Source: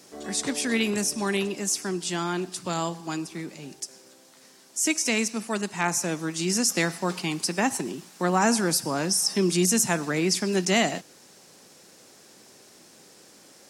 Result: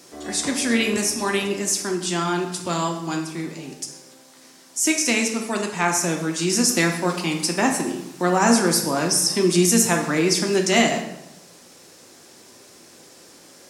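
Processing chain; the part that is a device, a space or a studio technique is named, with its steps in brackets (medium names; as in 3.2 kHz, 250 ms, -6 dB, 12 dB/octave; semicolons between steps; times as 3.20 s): bathroom (reverberation RT60 0.85 s, pre-delay 3 ms, DRR 2.5 dB); trim +3 dB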